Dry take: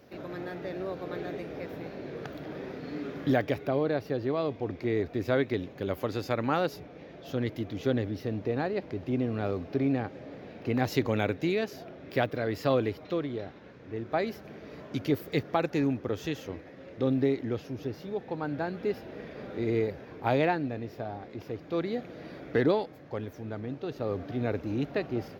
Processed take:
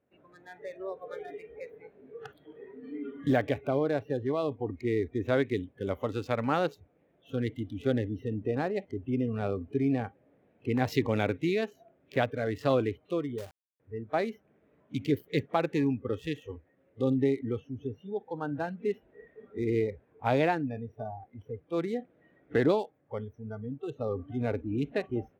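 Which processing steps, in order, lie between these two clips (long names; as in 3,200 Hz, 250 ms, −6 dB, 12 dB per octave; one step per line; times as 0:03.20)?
adaptive Wiener filter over 9 samples
noise reduction from a noise print of the clip's start 21 dB
0:13.38–0:13.80: log-companded quantiser 4 bits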